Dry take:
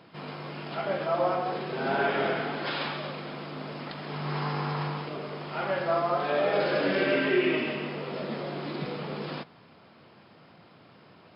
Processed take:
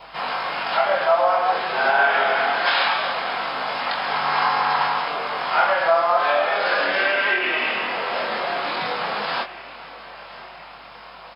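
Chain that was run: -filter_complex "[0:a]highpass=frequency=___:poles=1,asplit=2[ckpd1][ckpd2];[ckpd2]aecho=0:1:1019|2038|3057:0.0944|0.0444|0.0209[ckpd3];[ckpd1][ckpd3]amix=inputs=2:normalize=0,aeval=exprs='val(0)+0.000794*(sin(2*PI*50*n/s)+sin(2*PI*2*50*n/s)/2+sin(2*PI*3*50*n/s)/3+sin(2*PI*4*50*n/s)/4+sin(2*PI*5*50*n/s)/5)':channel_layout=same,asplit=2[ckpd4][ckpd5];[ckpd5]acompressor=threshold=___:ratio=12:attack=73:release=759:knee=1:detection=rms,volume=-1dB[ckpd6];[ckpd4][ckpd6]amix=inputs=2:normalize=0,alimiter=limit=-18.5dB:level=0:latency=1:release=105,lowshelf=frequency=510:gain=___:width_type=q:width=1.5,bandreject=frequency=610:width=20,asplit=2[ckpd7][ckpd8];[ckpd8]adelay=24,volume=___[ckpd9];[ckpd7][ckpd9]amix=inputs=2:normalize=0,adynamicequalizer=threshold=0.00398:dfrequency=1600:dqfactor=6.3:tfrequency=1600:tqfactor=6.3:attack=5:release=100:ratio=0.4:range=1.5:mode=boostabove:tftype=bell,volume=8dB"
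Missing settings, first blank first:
210, -35dB, -12.5, -4dB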